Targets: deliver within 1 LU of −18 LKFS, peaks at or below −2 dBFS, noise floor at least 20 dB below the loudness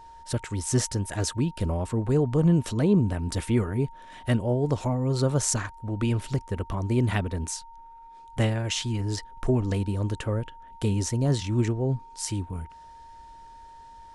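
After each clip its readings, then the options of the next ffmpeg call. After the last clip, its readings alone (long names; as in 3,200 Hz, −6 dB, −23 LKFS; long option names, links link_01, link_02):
interfering tone 920 Hz; level of the tone −45 dBFS; integrated loudness −27.0 LKFS; sample peak −8.0 dBFS; target loudness −18.0 LKFS
→ -af "bandreject=frequency=920:width=30"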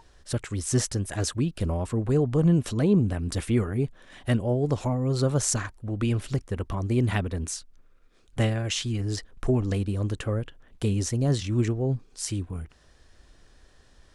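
interfering tone none found; integrated loudness −27.0 LKFS; sample peak −8.0 dBFS; target loudness −18.0 LKFS
→ -af "volume=9dB,alimiter=limit=-2dB:level=0:latency=1"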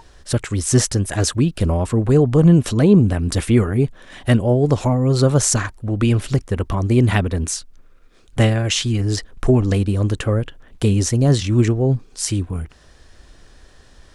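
integrated loudness −18.0 LKFS; sample peak −2.0 dBFS; background noise floor −49 dBFS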